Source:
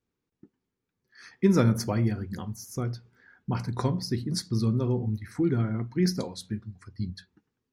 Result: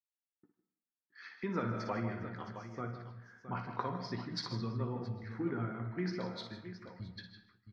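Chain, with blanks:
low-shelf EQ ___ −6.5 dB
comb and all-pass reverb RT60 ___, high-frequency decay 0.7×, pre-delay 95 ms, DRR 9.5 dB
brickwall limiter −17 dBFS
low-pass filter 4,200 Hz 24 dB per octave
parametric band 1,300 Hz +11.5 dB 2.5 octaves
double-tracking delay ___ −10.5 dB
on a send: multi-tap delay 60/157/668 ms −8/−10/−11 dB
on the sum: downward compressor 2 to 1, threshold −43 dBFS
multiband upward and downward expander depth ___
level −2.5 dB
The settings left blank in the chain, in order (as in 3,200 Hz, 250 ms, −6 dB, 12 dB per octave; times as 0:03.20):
97 Hz, 0.86 s, 17 ms, 100%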